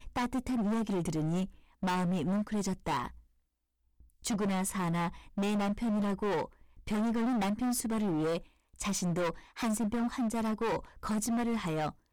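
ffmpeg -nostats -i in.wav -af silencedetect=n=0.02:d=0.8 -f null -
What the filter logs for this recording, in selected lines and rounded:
silence_start: 3.07
silence_end: 4.25 | silence_duration: 1.17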